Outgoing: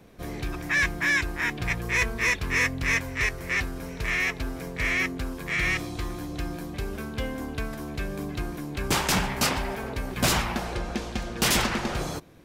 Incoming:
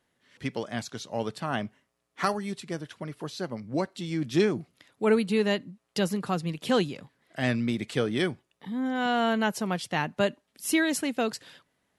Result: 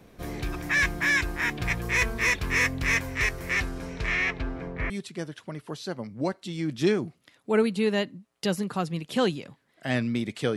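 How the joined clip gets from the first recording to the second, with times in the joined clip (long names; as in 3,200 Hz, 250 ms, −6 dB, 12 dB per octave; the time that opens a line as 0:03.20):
outgoing
0:03.60–0:04.90: low-pass filter 12,000 Hz → 1,400 Hz
0:04.90: continue with incoming from 0:02.43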